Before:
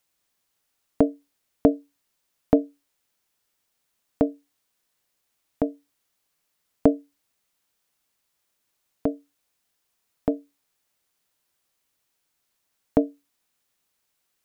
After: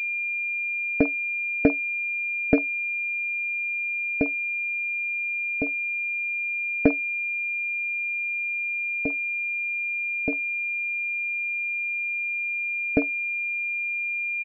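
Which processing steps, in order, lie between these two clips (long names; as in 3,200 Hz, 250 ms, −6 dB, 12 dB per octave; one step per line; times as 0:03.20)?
spectral dynamics exaggerated over time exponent 1.5
noise gate with hold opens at −53 dBFS
multiband delay without the direct sound lows, highs 50 ms, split 940 Hz
switching amplifier with a slow clock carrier 2,400 Hz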